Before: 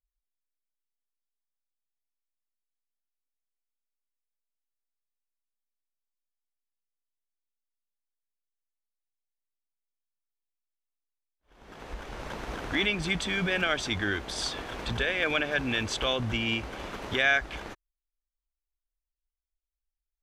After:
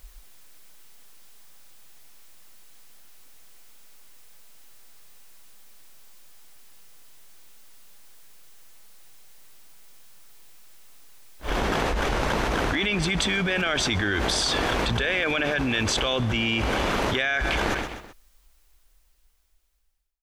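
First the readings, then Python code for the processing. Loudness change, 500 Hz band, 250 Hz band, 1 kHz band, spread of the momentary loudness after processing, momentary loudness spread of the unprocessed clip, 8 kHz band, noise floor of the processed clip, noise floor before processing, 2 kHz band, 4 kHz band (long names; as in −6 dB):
+4.0 dB, +6.0 dB, +6.5 dB, +8.5 dB, 3 LU, 15 LU, +9.0 dB, −62 dBFS, below −85 dBFS, +3.5 dB, +5.5 dB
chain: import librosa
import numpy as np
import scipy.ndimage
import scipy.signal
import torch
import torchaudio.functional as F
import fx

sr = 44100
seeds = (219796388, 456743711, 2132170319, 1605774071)

p1 = fx.fade_out_tail(x, sr, length_s=5.28)
p2 = p1 + fx.echo_feedback(p1, sr, ms=128, feedback_pct=44, wet_db=-24.0, dry=0)
y = fx.env_flatten(p2, sr, amount_pct=100)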